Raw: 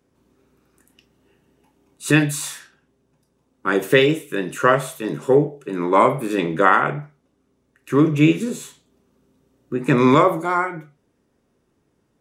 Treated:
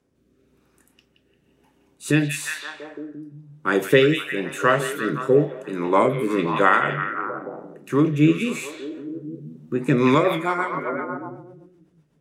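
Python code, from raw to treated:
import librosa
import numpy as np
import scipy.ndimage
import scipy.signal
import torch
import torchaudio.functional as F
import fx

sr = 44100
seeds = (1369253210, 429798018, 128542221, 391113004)

y = fx.echo_stepped(x, sr, ms=173, hz=2900.0, octaves=-0.7, feedback_pct=70, wet_db=-1.5)
y = fx.rotary_switch(y, sr, hz=1.0, then_hz=8.0, switch_at_s=9.69)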